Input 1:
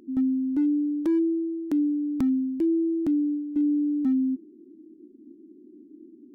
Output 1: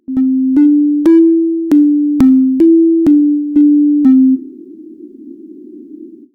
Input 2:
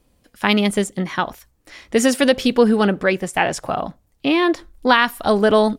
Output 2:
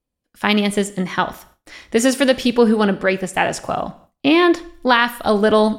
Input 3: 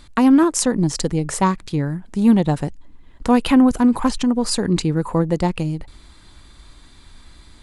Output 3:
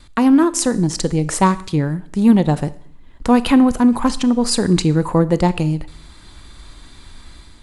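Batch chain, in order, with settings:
Schroeder reverb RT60 0.63 s, combs from 26 ms, DRR 15.5 dB; AGC gain up to 5 dB; gate with hold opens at -38 dBFS; normalise peaks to -1.5 dBFS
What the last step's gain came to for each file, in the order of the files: +11.0, 0.0, 0.0 dB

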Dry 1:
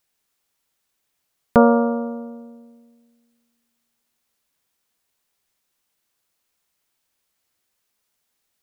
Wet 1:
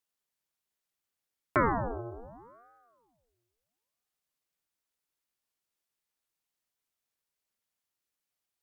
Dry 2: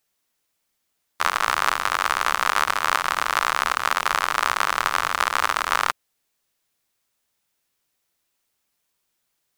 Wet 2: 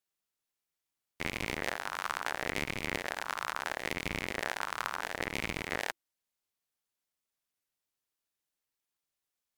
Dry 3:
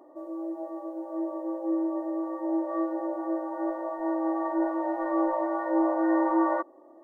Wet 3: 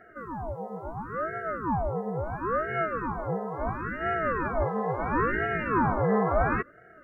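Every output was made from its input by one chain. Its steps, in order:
added harmonics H 4 -42 dB, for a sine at -1 dBFS; ring modulator with a swept carrier 570 Hz, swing 80%, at 0.73 Hz; normalise peaks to -12 dBFS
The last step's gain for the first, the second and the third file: -10.0, -11.0, +3.0 dB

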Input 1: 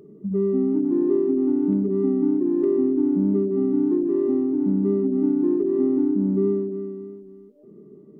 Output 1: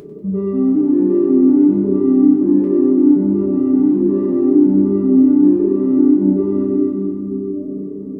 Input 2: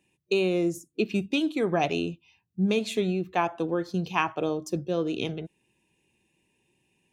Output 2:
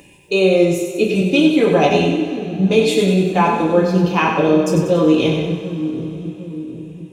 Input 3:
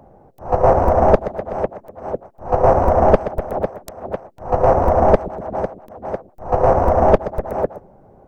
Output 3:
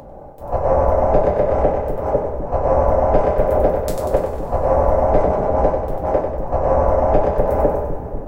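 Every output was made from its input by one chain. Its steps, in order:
reverse; compressor 12:1, threshold -22 dBFS; reverse; bell 490 Hz +3.5 dB 1.7 oct; on a send: split-band echo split 340 Hz, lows 0.751 s, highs 95 ms, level -6 dB; on the sum: two-slope reverb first 0.26 s, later 4.1 s, from -22 dB, DRR -2.5 dB; upward compressor, threshold -43 dBFS; low shelf 66 Hz +8.5 dB; resonator 98 Hz, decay 1.3 s, harmonics odd, mix 40%; normalise peaks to -1.5 dBFS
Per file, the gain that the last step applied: +9.0, +11.0, +6.5 dB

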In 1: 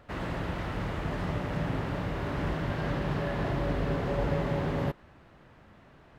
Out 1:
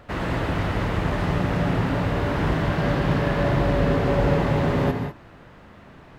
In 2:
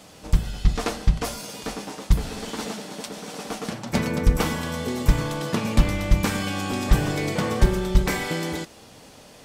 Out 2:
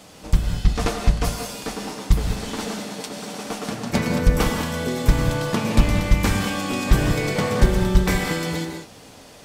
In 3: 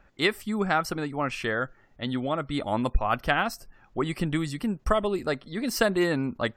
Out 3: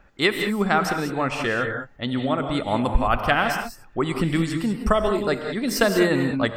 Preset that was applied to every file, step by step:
non-linear reverb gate 0.22 s rising, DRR 5 dB; match loudness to -23 LUFS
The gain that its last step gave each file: +8.0, +1.5, +4.0 dB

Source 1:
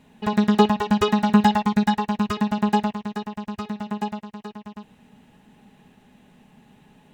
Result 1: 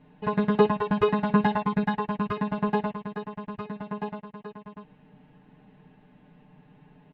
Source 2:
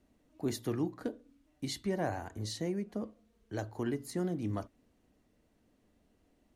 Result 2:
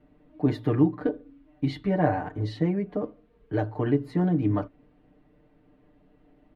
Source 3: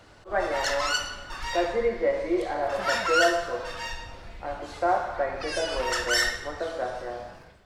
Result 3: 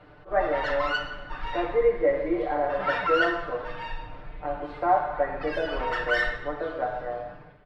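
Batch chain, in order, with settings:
air absorption 450 m; comb 6.7 ms, depth 100%; match loudness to -27 LUFS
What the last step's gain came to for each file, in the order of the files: -3.0, +9.0, 0.0 dB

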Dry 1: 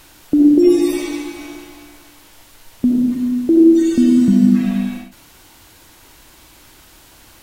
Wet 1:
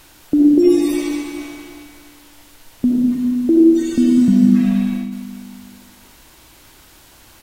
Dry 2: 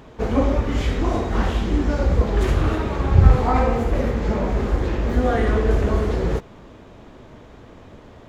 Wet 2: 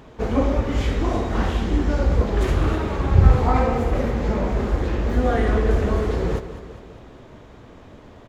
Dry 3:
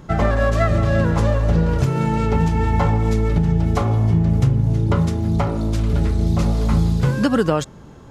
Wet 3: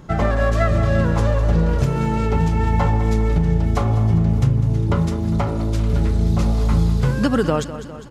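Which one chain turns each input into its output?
feedback echo 0.202 s, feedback 58%, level -13 dB; gain -1 dB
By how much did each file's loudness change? -0.5, -0.5, -0.5 LU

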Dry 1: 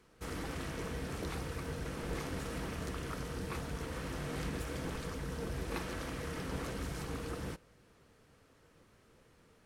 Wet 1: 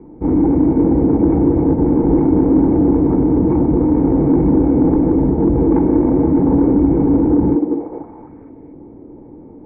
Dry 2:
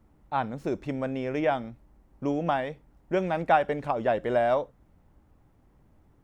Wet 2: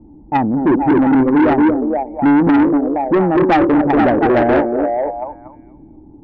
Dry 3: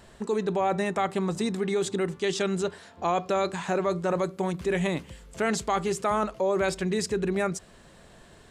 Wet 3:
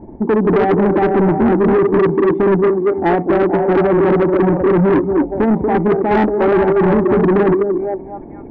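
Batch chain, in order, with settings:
vocal tract filter u; air absorption 260 m; delay with a stepping band-pass 0.235 s, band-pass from 370 Hz, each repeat 0.7 oct, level -0.5 dB; in parallel at -0.5 dB: level quantiser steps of 13 dB; on the sum: soft clip -34.5 dBFS; bell 1800 Hz +4.5 dB 0.73 oct; match loudness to -14 LUFS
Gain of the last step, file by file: +32.0, +25.5, +25.5 dB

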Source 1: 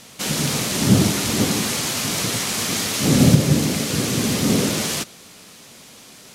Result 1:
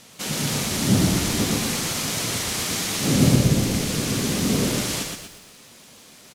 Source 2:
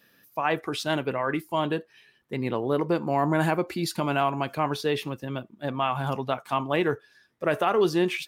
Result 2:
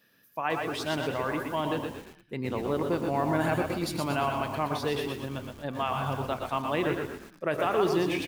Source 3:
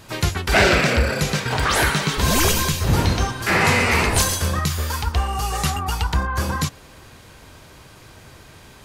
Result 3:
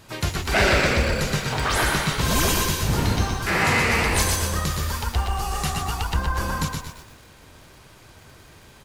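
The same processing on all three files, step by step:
on a send: frequency-shifting echo 0.113 s, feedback 45%, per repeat -35 Hz, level -8 dB; on the sum: lo-fi delay 0.124 s, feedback 35%, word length 7-bit, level -5.5 dB; gain -4.5 dB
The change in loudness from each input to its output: -3.0, -3.0, -2.5 LU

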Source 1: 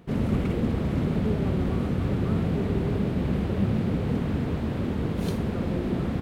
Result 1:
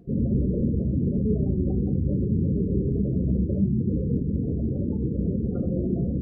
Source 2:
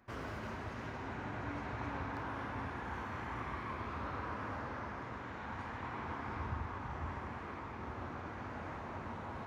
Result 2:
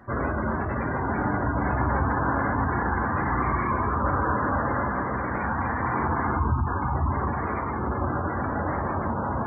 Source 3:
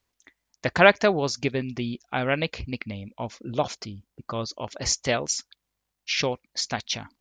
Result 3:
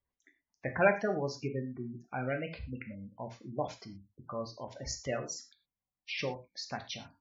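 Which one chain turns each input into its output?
tone controls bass 0 dB, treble -6 dB; spectral gate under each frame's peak -15 dB strong; non-linear reverb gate 0.14 s falling, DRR 4.5 dB; normalise peaks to -12 dBFS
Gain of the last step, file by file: +0.5, +16.0, -10.0 dB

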